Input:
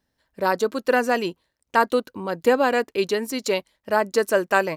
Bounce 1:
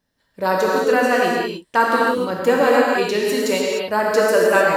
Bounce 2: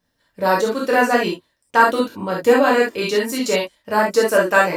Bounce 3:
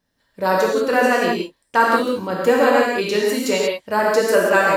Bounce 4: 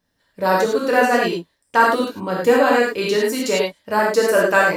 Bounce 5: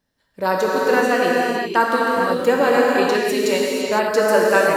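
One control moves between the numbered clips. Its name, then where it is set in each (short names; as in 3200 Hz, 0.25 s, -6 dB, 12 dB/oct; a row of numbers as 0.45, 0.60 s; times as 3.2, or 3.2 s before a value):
non-linear reverb, gate: 330, 90, 210, 130, 530 ms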